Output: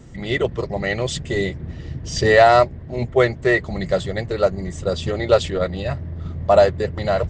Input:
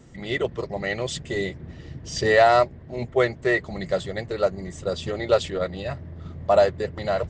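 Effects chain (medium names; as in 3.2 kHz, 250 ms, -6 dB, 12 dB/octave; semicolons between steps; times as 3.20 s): bass shelf 120 Hz +7.5 dB; trim +4 dB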